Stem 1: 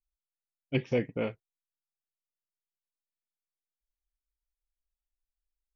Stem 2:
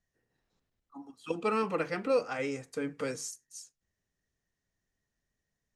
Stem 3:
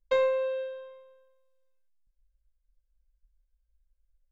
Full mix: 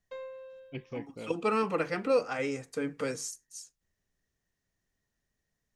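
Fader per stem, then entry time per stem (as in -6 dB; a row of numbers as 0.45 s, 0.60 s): -11.5 dB, +1.5 dB, -17.5 dB; 0.00 s, 0.00 s, 0.00 s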